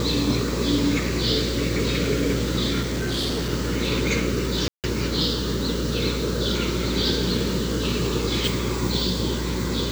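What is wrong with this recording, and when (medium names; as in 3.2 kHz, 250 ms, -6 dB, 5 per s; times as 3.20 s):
buzz 60 Hz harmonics 9 -28 dBFS
2.81–3.52 s: clipped -21.5 dBFS
4.68–4.84 s: dropout 158 ms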